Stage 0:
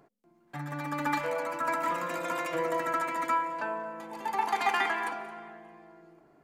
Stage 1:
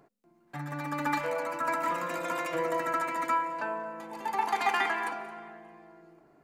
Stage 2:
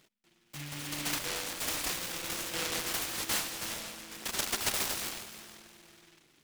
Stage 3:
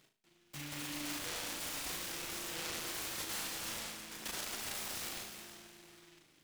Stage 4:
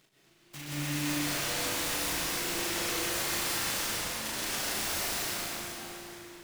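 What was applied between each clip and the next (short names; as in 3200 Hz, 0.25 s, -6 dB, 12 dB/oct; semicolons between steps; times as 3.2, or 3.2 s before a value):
notch 3300 Hz, Q 22
noise-modulated delay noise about 2400 Hz, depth 0.45 ms; gain -4.5 dB
limiter -31.5 dBFS, peak gain reduction 11.5 dB; flutter echo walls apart 6.4 m, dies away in 0.36 s; gain -3 dB
plate-style reverb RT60 3.4 s, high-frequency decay 0.7×, pre-delay 0.11 s, DRR -7 dB; gain +2 dB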